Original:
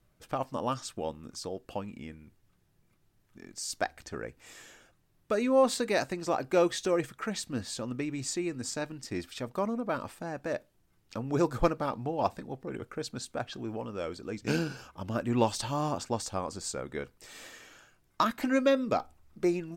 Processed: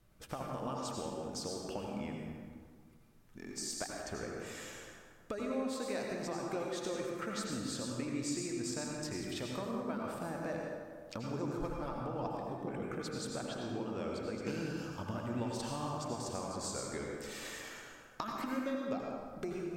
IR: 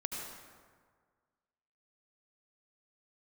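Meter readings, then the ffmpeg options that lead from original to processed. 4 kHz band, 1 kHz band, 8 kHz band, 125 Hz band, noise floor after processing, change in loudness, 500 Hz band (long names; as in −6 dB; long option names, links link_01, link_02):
−5.0 dB, −8.5 dB, −3.5 dB, −5.0 dB, −59 dBFS, −7.5 dB, −8.5 dB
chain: -filter_complex "[0:a]acompressor=threshold=-40dB:ratio=6[link_01];[1:a]atrim=start_sample=2205,asetrate=40572,aresample=44100[link_02];[link_01][link_02]afir=irnorm=-1:irlink=0,volume=2dB"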